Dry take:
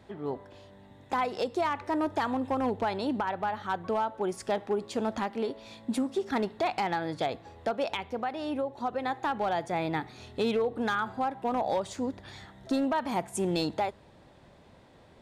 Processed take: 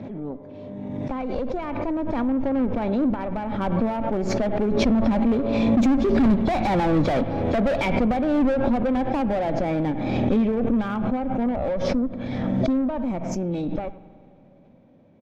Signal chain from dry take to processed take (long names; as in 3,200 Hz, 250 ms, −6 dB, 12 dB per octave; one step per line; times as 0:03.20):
hearing-aid frequency compression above 3,300 Hz 1.5 to 1
source passing by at 0:07.05, 7 m/s, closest 5.5 metres
high-pass filter 110 Hz 24 dB per octave
high-shelf EQ 5,100 Hz +10 dB
in parallel at −12 dB: bit reduction 6 bits
on the sum: hollow resonant body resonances 250/550/2,300 Hz, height 13 dB, ringing for 25 ms
soft clipping −30 dBFS, distortion −4 dB
harmonic generator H 4 −19 dB, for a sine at −30 dBFS
RIAA equalisation playback
far-end echo of a speakerphone 100 ms, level −18 dB
spring reverb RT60 2.3 s, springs 46 ms, chirp 60 ms, DRR 16 dB
background raised ahead of every attack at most 23 dB per second
level +7.5 dB